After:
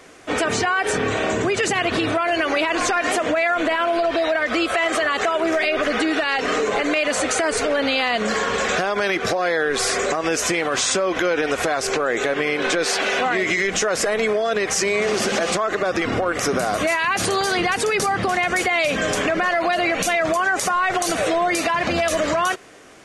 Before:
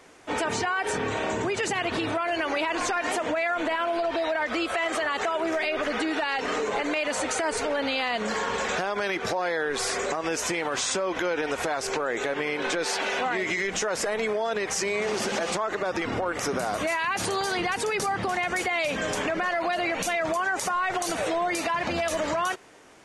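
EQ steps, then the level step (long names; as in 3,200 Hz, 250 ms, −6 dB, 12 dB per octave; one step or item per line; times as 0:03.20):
notch filter 900 Hz, Q 6.3
+7.0 dB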